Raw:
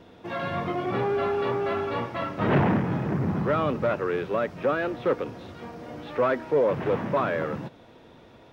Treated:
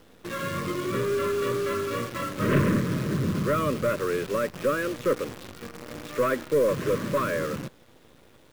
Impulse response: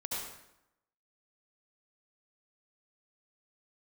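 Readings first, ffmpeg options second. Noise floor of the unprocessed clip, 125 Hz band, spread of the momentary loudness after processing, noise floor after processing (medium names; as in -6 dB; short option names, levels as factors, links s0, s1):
-52 dBFS, 0.0 dB, 12 LU, -55 dBFS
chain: -af "aeval=exprs='0.299*(cos(1*acos(clip(val(0)/0.299,-1,1)))-cos(1*PI/2))+0.0376*(cos(2*acos(clip(val(0)/0.299,-1,1)))-cos(2*PI/2))':c=same,asuperstop=centerf=790:order=12:qfactor=2.1,acrusher=bits=7:dc=4:mix=0:aa=0.000001"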